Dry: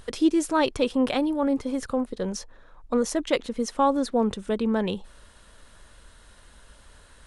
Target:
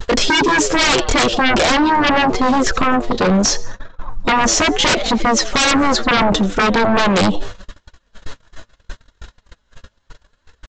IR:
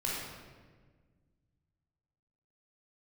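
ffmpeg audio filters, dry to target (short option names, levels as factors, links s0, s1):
-filter_complex "[0:a]atempo=0.68,asplit=2[s0][s1];[s1]acompressor=threshold=0.0316:ratio=6,volume=1[s2];[s0][s2]amix=inputs=2:normalize=0,flanger=delay=2:depth=7.9:regen=36:speed=0.76:shape=triangular,asplit=4[s3][s4][s5][s6];[s4]adelay=86,afreqshift=94,volume=0.075[s7];[s5]adelay=172,afreqshift=188,volume=0.0367[s8];[s6]adelay=258,afreqshift=282,volume=0.018[s9];[s3][s7][s8][s9]amix=inputs=4:normalize=0,aresample=16000,aeval=exprs='0.299*sin(PI/2*7.94*val(0)/0.299)':c=same,aresample=44100,agate=range=0.0158:threshold=0.0891:ratio=16:detection=peak"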